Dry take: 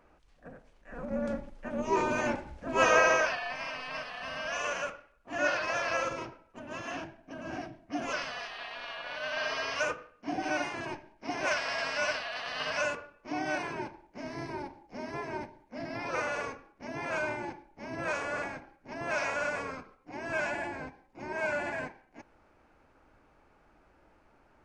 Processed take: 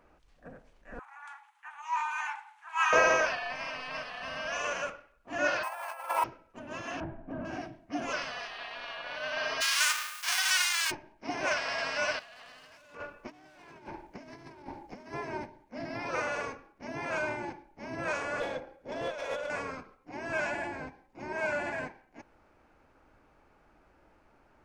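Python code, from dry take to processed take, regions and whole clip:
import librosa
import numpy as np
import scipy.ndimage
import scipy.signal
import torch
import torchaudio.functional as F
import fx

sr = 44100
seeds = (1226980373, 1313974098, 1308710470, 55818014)

y = fx.chain(x, sr, fx.steep_highpass(hz=800.0, slope=96),
    fx.peak_eq(hz=5000.0, db=-10.5, octaves=0.76), at=(0.99, 2.93))
y = fx.chain(y, sr, fx.resample_bad(factor=4, down='filtered', up='hold'),
    fx.over_compress(threshold_db=-38.0, ratio=-0.5),
    fx.highpass_res(hz=850.0, q=7.9), at=(5.63, 6.24))
y = fx.chain(y, sr, fx.law_mismatch(coded='mu'),
    fx.lowpass(hz=1300.0, slope=12),
    fx.low_shelf(hz=140.0, db=10.5), at=(7.0, 7.45))
y = fx.envelope_flatten(y, sr, power=0.3, at=(9.6, 10.9), fade=0.02)
y = fx.highpass(y, sr, hz=1100.0, slope=24, at=(9.6, 10.9), fade=0.02)
y = fx.env_flatten(y, sr, amount_pct=50, at=(9.6, 10.9), fade=0.02)
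y = fx.chain(y, sr, fx.clip_hard(threshold_db=-34.5),
    fx.over_compress(threshold_db=-46.0, ratio=-0.5), at=(12.19, 15.13))
y = fx.chain(y, sr, fx.over_compress(threshold_db=-35.0, ratio=-0.5),
    fx.tube_stage(drive_db=34.0, bias=0.5),
    fx.small_body(hz=(510.0, 3400.0), ring_ms=40, db=17), at=(18.4, 19.5))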